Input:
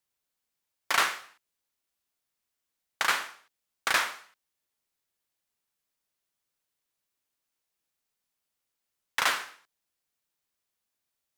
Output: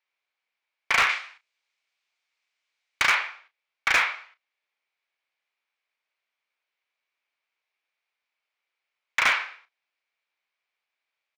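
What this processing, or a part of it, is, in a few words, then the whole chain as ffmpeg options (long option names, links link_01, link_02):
megaphone: -filter_complex "[0:a]lowpass=6200,asettb=1/sr,asplit=3[link_01][link_02][link_03];[link_01]atrim=end=1.094[link_04];[link_02]atrim=start=1.09:end=3.08,asetpts=PTS-STARTPTS,afade=type=in:duration=0.004:curve=qsin,afade=type=out:start_time=1.986:duration=0.004:curve=qsin,aemphasis=mode=production:type=75kf[link_05];[link_03]atrim=start=3.076[link_06];[link_04][link_05]acrossfade=duration=0.004:curve1=hsin:curve2=qsin[link_07];[link_07][link_06]acrossfade=duration=0.004:curve1=qsin:curve2=hsin,highpass=610,lowpass=3700,equalizer=frequency=2300:width_type=o:width=0.33:gain=10,asoftclip=type=hard:threshold=-19dB,asplit=2[link_08][link_09];[link_09]adelay=33,volume=-12dB[link_10];[link_08][link_10]amix=inputs=2:normalize=0,volume=4dB"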